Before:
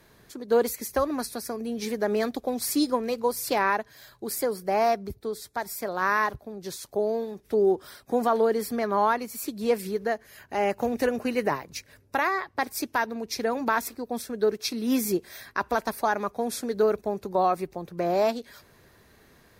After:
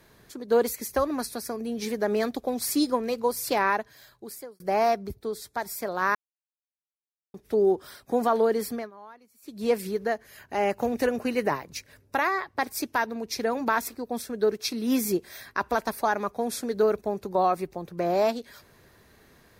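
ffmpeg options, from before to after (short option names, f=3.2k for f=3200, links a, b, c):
-filter_complex "[0:a]asplit=6[a][b][c][d][e][f];[a]atrim=end=4.6,asetpts=PTS-STARTPTS,afade=t=out:st=3.8:d=0.8[g];[b]atrim=start=4.6:end=6.15,asetpts=PTS-STARTPTS,afade=t=in:d=0.004:c=hsin,afade=t=out:st=1.546:d=0.004:c=hsin[h];[c]atrim=start=6.15:end=7.34,asetpts=PTS-STARTPTS,volume=0[i];[d]atrim=start=7.34:end=8.91,asetpts=PTS-STARTPTS,afade=t=in:d=0.004:c=hsin,afade=t=out:st=1.34:d=0.23:silence=0.0630957[j];[e]atrim=start=8.91:end=9.42,asetpts=PTS-STARTPTS,volume=-24dB[k];[f]atrim=start=9.42,asetpts=PTS-STARTPTS,afade=t=in:d=0.23:silence=0.0630957[l];[g][h][i][j][k][l]concat=n=6:v=0:a=1"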